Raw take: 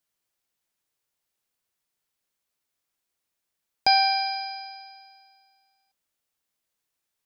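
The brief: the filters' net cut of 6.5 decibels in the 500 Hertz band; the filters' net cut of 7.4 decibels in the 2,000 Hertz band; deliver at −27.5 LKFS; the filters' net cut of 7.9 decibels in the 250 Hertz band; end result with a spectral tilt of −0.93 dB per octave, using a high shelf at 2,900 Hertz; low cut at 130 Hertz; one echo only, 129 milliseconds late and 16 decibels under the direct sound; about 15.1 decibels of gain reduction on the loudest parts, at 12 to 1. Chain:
high-pass filter 130 Hz
parametric band 250 Hz −7.5 dB
parametric band 500 Hz −7.5 dB
parametric band 2,000 Hz −5.5 dB
high-shelf EQ 2,900 Hz −9 dB
downward compressor 12 to 1, threshold −36 dBFS
single-tap delay 129 ms −16 dB
level +14 dB

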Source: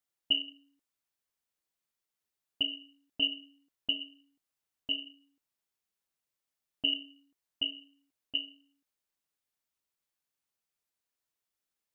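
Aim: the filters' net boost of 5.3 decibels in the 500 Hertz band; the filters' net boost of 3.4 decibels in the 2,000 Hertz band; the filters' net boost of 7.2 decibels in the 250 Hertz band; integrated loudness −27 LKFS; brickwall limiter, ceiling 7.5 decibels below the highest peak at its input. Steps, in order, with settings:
parametric band 250 Hz +6.5 dB
parametric band 500 Hz +5 dB
parametric band 2,000 Hz +6.5 dB
level +7 dB
brickwall limiter −12 dBFS

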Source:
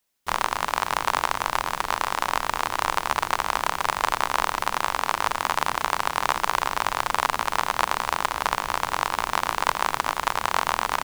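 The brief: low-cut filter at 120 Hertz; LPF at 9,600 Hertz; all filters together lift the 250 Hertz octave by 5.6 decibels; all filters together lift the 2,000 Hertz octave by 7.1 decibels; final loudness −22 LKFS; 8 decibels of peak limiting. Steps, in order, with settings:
high-pass filter 120 Hz
low-pass filter 9,600 Hz
parametric band 250 Hz +7.5 dB
parametric band 2,000 Hz +9 dB
level +3 dB
brickwall limiter −4.5 dBFS

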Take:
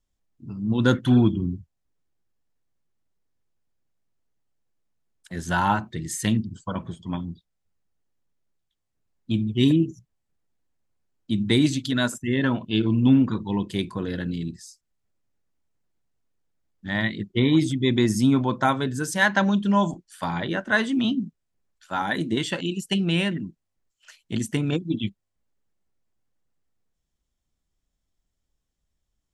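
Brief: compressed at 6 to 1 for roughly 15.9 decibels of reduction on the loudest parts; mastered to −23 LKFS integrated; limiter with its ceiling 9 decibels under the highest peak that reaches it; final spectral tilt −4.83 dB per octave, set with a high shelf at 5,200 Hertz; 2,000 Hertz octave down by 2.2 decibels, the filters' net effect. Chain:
parametric band 2,000 Hz −4 dB
high-shelf EQ 5,200 Hz +8.5 dB
downward compressor 6 to 1, threshold −31 dBFS
level +13.5 dB
brickwall limiter −12.5 dBFS

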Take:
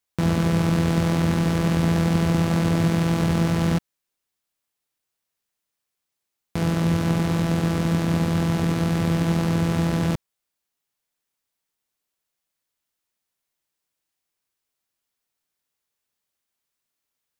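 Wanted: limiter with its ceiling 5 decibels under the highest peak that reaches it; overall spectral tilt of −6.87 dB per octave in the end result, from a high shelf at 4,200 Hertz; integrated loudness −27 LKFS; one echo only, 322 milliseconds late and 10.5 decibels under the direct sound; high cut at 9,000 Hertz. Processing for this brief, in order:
low-pass filter 9,000 Hz
high-shelf EQ 4,200 Hz −4 dB
brickwall limiter −13.5 dBFS
single-tap delay 322 ms −10.5 dB
level −3 dB

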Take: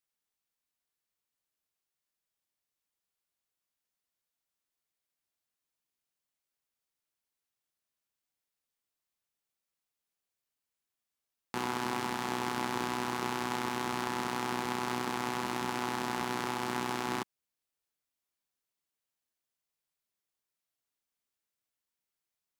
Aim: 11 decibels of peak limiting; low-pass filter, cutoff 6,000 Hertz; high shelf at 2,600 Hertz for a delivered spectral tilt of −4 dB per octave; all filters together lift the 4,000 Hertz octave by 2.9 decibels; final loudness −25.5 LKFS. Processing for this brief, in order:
low-pass filter 6,000 Hz
high-shelf EQ 2,600 Hz −3 dB
parametric band 4,000 Hz +7 dB
level +15.5 dB
brickwall limiter −9.5 dBFS

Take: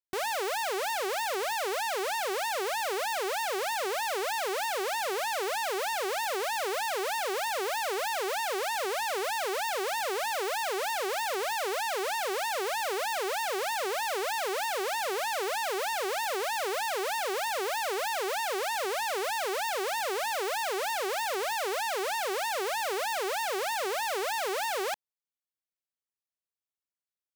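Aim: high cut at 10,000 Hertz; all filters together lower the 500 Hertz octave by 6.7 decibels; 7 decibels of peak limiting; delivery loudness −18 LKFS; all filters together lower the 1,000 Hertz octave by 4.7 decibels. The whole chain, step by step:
low-pass filter 10,000 Hz
parametric band 500 Hz −8 dB
parametric band 1,000 Hz −3 dB
level +22 dB
brickwall limiter −9 dBFS

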